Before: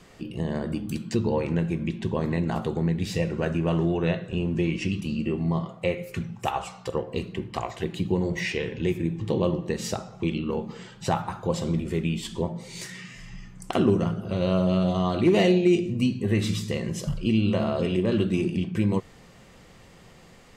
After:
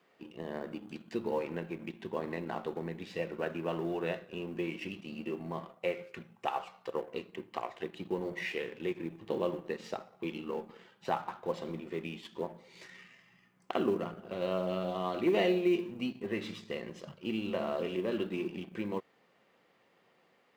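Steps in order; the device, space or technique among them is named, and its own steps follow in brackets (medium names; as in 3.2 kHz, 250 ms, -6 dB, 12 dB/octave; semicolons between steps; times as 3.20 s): phone line with mismatched companding (band-pass 320–3200 Hz; companding laws mixed up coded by A); trim -5 dB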